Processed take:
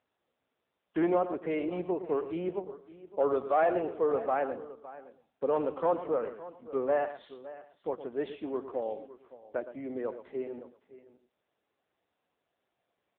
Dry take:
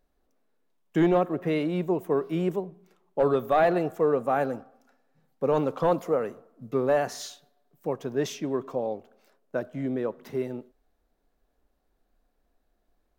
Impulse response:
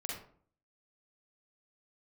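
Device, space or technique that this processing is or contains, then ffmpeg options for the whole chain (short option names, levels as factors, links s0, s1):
satellite phone: -af "highpass=310,lowpass=3200,aecho=1:1:113:0.251,aecho=1:1:564:0.15,volume=0.708" -ar 8000 -c:a libopencore_amrnb -b:a 6700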